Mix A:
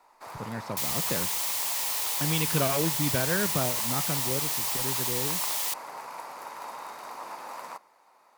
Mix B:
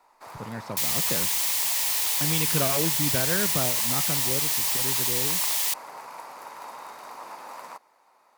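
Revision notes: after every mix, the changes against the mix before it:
first sound: send off; second sound +4.5 dB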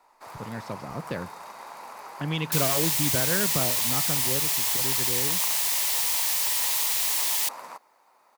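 second sound: entry +1.75 s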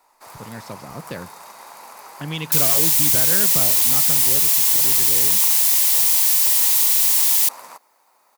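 master: add treble shelf 5.3 kHz +11 dB

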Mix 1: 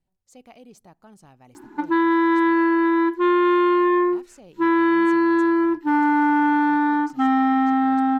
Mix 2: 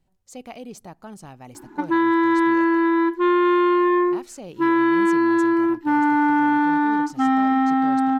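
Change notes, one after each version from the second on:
speech +9.5 dB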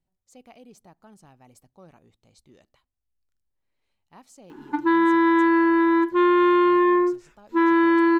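speech -11.5 dB; background: entry +2.95 s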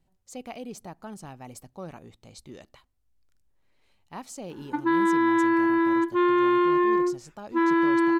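speech +10.5 dB; background -3.5 dB

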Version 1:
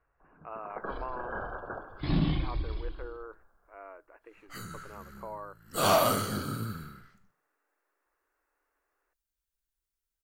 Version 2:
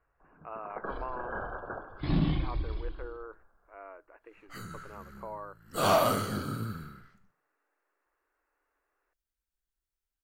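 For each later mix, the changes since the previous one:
second sound: add treble shelf 3.6 kHz -5.5 dB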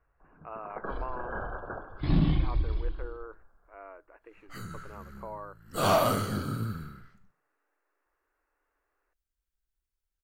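master: add bass shelf 140 Hz +6 dB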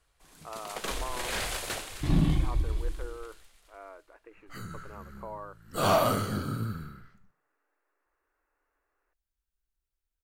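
first sound: remove brick-wall FIR low-pass 1.7 kHz

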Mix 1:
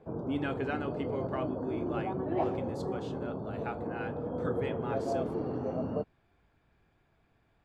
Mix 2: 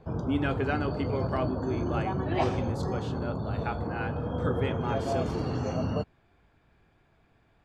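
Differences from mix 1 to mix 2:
speech +5.0 dB; background: remove band-pass filter 410 Hz, Q 0.89

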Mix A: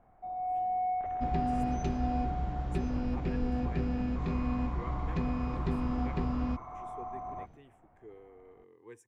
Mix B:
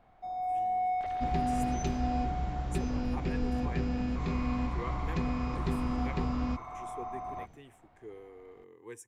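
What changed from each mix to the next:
speech +4.0 dB; first sound: remove Gaussian low-pass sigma 3.6 samples; master: add treble shelf 4.1 kHz +11 dB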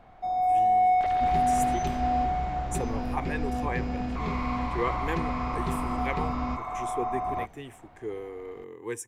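speech +11.5 dB; first sound +9.0 dB

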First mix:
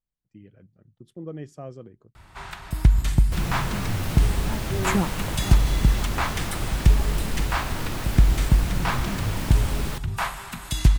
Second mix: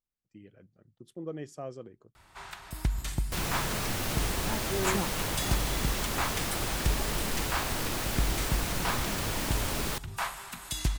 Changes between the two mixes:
first sound -6.0 dB; master: add tone controls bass -7 dB, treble +4 dB

